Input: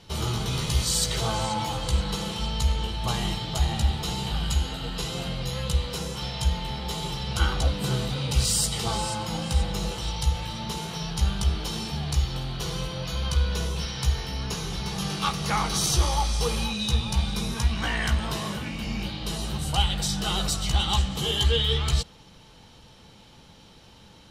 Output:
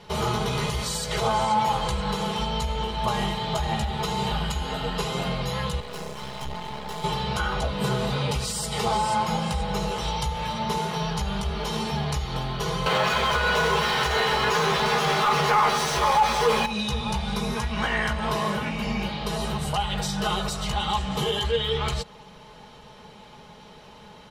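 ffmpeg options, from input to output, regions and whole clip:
-filter_complex "[0:a]asettb=1/sr,asplit=3[a][b][c];[a]atrim=end=5.804[d];[b]atrim=start=5.8:end=7.04,asetpts=PTS-STARTPTS,afade=t=in:d=0.004:c=qsin,afade=t=out:st=1.236:d=0.004:c=qsin,highpass=55,aeval=exprs='(tanh(10*val(0)+0.4)-tanh(0.4))/10':c=same,aeval=exprs='max(val(0),0)':c=same[e];[c]atrim=start=7.036[f];[d][e]acrossfade=d=0.004:c1=hsin:c2=qsin[g];[g][f]acrossfade=d=0.004:c1=qsin:c2=hsin,asettb=1/sr,asplit=3[h][i][j];[h]atrim=end=12.864[k];[i]atrim=start=12.86:end=16.66,asetpts=PTS-STARTPTS,afade=t=in:d=0.004:c=qsin,afade=t=out:st=3.796:d=0.004:c=qsin,asplit=2[l][m];[m]highpass=f=720:p=1,volume=34dB,asoftclip=type=tanh:threshold=-10dB[n];[l][n]amix=inputs=2:normalize=0,lowpass=f=2.4k:p=1,volume=-6dB,acrusher=bits=6:mix=0:aa=0.5,asplit=2[o][p];[p]adelay=13,volume=-3dB[q];[o][q]amix=inputs=2:normalize=0,atrim=end_sample=167580[r];[j]atrim=start=16.656[s];[k][r]acrossfade=d=0.004:c1=hsin:c2=qsin[t];[t][s]acrossfade=d=0.004:c1=qsin:c2=hsin,aecho=1:1:4.8:0.58,alimiter=limit=-18.5dB:level=0:latency=1:release=151,equalizer=f=125:t=o:w=1:g=6,equalizer=f=500:t=o:w=1:g=9,equalizer=f=1k:t=o:w=1:g=8,equalizer=f=2k:t=o:w=1:g=6,volume=-2.5dB"

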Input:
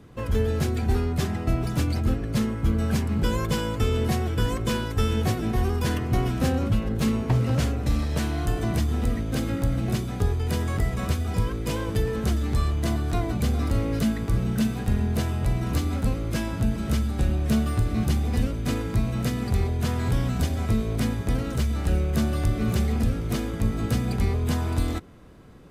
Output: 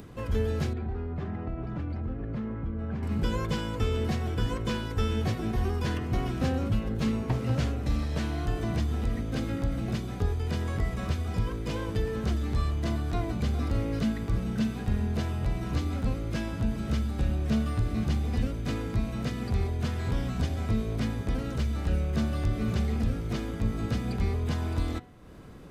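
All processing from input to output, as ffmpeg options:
-filter_complex "[0:a]asettb=1/sr,asplit=3[a][b][c];[a]atrim=end=0.734[d];[b]atrim=start=0.73:end=3.03,asetpts=PTS-STARTPTS,afade=t=in:d=0.004:c=qsin,afade=t=out:st=2.296:d=0.004:c=qsin,lowpass=1.7k,acompressor=threshold=-25dB:ratio=5:attack=3.2:release=140:knee=1:detection=peak[e];[c]atrim=start=3.026[f];[d][e]acrossfade=d=0.004:c1=hsin:c2=qsin[g];[g][f]acrossfade=d=0.004:c1=qsin:c2=hsin,acrossover=split=6200[h][i];[i]acompressor=threshold=-53dB:ratio=4:attack=1:release=60[j];[h][j]amix=inputs=2:normalize=0,bandreject=f=122.7:t=h:w=4,bandreject=f=245.4:t=h:w=4,bandreject=f=368.1:t=h:w=4,bandreject=f=490.8:t=h:w=4,bandreject=f=613.5:t=h:w=4,bandreject=f=736.2:t=h:w=4,bandreject=f=858.9:t=h:w=4,bandreject=f=981.6:t=h:w=4,bandreject=f=1.1043k:t=h:w=4,bandreject=f=1.227k:t=h:w=4,bandreject=f=1.3497k:t=h:w=4,bandreject=f=1.4724k:t=h:w=4,bandreject=f=1.5951k:t=h:w=4,bandreject=f=1.7178k:t=h:w=4,bandreject=f=1.8405k:t=h:w=4,bandreject=f=1.9632k:t=h:w=4,bandreject=f=2.0859k:t=h:w=4,bandreject=f=2.2086k:t=h:w=4,bandreject=f=2.3313k:t=h:w=4,bandreject=f=2.454k:t=h:w=4,bandreject=f=2.5767k:t=h:w=4,bandreject=f=2.6994k:t=h:w=4,bandreject=f=2.8221k:t=h:w=4,bandreject=f=2.9448k:t=h:w=4,bandreject=f=3.0675k:t=h:w=4,bandreject=f=3.1902k:t=h:w=4,bandreject=f=3.3129k:t=h:w=4,bandreject=f=3.4356k:t=h:w=4,bandreject=f=3.5583k:t=h:w=4,bandreject=f=3.681k:t=h:w=4,bandreject=f=3.8037k:t=h:w=4,bandreject=f=3.9264k:t=h:w=4,bandreject=f=4.0491k:t=h:w=4,bandreject=f=4.1718k:t=h:w=4,acompressor=mode=upward:threshold=-35dB:ratio=2.5,volume=-4dB"

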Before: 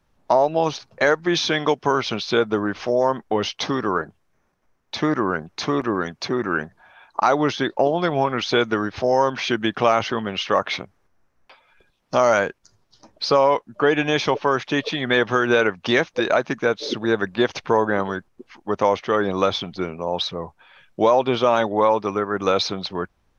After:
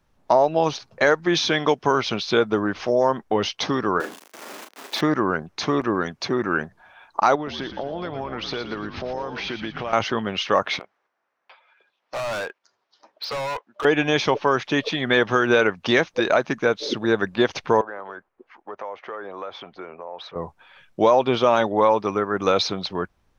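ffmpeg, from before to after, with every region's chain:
-filter_complex "[0:a]asettb=1/sr,asplit=3[a][b][c];[a]atrim=end=4.004[d];[b]atrim=start=4:end=5.01,asetpts=PTS-STARTPTS,afade=t=in:d=0.004:c=qsin,afade=t=out:st=1.006:d=0.004:c=qsin,aeval=exprs='val(0)+0.5*0.0266*sgn(val(0))':c=same,highpass=f=270:w=0.5412,highpass=f=270:w=1.3066,asplit=2[e][f];[f]adelay=37,volume=-5.5dB[g];[e][g]amix=inputs=2:normalize=0,atrim=end_sample=44541[h];[c]atrim=start=5.006[i];[d][h]acrossfade=d=0.004:c1=hsin:c2=qsin[j];[j][i]acrossfade=d=0.004:c1=qsin:c2=hsin,asettb=1/sr,asplit=3[k][l][m];[k]atrim=end=7.354[n];[l]atrim=start=7.35:end=9.93,asetpts=PTS-STARTPTS,afade=t=in:d=0.004:c=qsin,afade=t=out:st=2.576:d=0.004:c=qsin,lowpass=f=5.3k:w=0.5412,lowpass=f=5.3k:w=1.3066,acompressor=threshold=-27dB:ratio=4:attack=3.2:release=140:knee=1:detection=peak,asplit=6[o][p][q][r][s][t];[p]adelay=116,afreqshift=-68,volume=-9dB[u];[q]adelay=232,afreqshift=-136,volume=-16.5dB[v];[r]adelay=348,afreqshift=-204,volume=-24.1dB[w];[s]adelay=464,afreqshift=-272,volume=-31.6dB[x];[t]adelay=580,afreqshift=-340,volume=-39.1dB[y];[o][u][v][w][x][y]amix=inputs=6:normalize=0,atrim=end_sample=113778[z];[m]atrim=start=9.926[aa];[n][z]acrossfade=d=0.004:c1=hsin:c2=qsin[ab];[ab][aa]acrossfade=d=0.004:c1=qsin:c2=hsin,asettb=1/sr,asplit=3[ac][ad][ae];[ac]atrim=end=10.794[af];[ad]atrim=start=10.79:end=13.85,asetpts=PTS-STARTPTS,afade=t=in:d=0.004:c=qsin,afade=t=out:st=3.056:d=0.004:c=qsin,highpass=580,lowpass=3.7k,volume=25.5dB,asoftclip=hard,volume=-25.5dB[ag];[ae]atrim=start=13.846[ah];[af][ag]acrossfade=d=0.004:c1=hsin:c2=qsin[ai];[ai][ah]acrossfade=d=0.004:c1=qsin:c2=hsin,asettb=1/sr,asplit=3[aj][ak][al];[aj]atrim=end=17.814[am];[ak]atrim=start=17.81:end=20.36,asetpts=PTS-STARTPTS,afade=t=in:d=0.004:c=qsin,afade=t=out:st=2.546:d=0.004:c=qsin,acrossover=split=400 2300:gain=0.126 1 0.126[an][ao][ap];[an][ao][ap]amix=inputs=3:normalize=0,acompressor=threshold=-33dB:ratio=3:attack=3.2:release=140:knee=1:detection=peak[aq];[al]atrim=start=20.356[ar];[am][aq]acrossfade=d=0.004:c1=hsin:c2=qsin[as];[as][ar]acrossfade=d=0.004:c1=qsin:c2=hsin"

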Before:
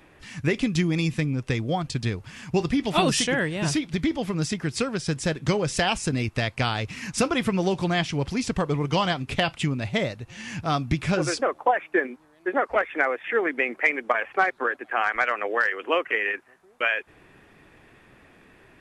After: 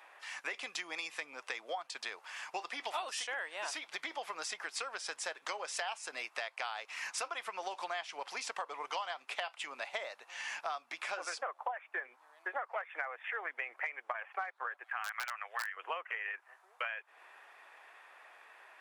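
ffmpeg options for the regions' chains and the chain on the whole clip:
-filter_complex "[0:a]asettb=1/sr,asplit=3[a][b][c];[a]atrim=end=14.844[d];[b]atrim=start=14.84:end=15.77,asetpts=PTS-STARTPTS,afade=t=in:d=0.004:c=qsin,afade=t=out:st=0.926:d=0.004:c=qsin,highpass=1.2k,aeval=exprs='(mod(4.73*val(0)+1,2)-1)/4.73':c=same[e];[c]atrim=start=15.766[f];[d][e]acrossfade=d=0.004:c1=hsin:c2=qsin[g];[g][f]acrossfade=d=0.004:c1=qsin:c2=hsin,highpass=f=790:w=0.5412,highpass=f=790:w=1.3066,tiltshelf=f=1.2k:g=6,acompressor=threshold=-38dB:ratio=6,volume=1.5dB"

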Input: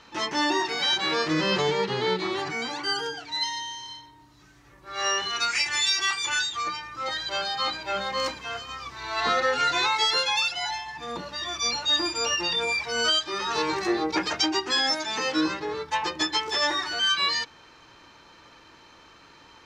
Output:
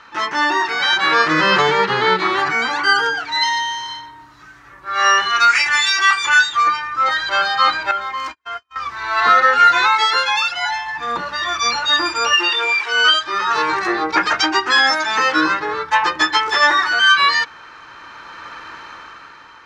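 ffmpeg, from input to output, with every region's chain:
-filter_complex "[0:a]asettb=1/sr,asplit=3[a][b][c];[a]atrim=end=7.914[d];[b]atrim=start=7.91:end=8.76,asetpts=PTS-STARTPTS,afade=t=in:d=0.004:c=qsin,afade=t=out:st=0.846:d=0.004:c=qsin,agate=range=-49dB:threshold=-34dB:ratio=16:release=100:detection=peak,aecho=1:1:2.9:0.66,atrim=end_sample=37485,acompressor=threshold=-43dB:ratio=2:attack=3.2:release=140:knee=1:detection=peak[e];[c]atrim=start=8.756[f];[d][e]acrossfade=d=0.004:c1=hsin:c2=qsin[g];[g][f]acrossfade=d=0.004:c1=qsin:c2=hsin,asettb=1/sr,asplit=3[h][i][j];[h]atrim=end=12.334[k];[i]atrim=start=12.33:end=13.14,asetpts=PTS-STARTPTS,afade=t=in:d=0.004:c=qsin,afade=t=out:st=0.806:d=0.004:c=qsin,acrusher=bits=7:dc=4:mix=0:aa=0.000001,highpass=f=300:w=0.5412,highpass=f=300:w=1.3066,equalizer=f=370:t=q:w=4:g=7,equalizer=f=590:t=q:w=4:g=-9,equalizer=f=2.9k:t=q:w=4:g=8,lowpass=f=7.1k:w=0.5412,lowpass=f=7.1k:w=1.3066[l];[j]atrim=start=13.136[m];[k][l]acrossfade=d=0.004:c1=hsin:c2=qsin[n];[n][m]acrossfade=d=0.004:c1=qsin:c2=hsin,equalizer=f=1.4k:w=0.9:g=14.5,dynaudnorm=f=210:g=9:m=11.5dB,volume=-1dB"

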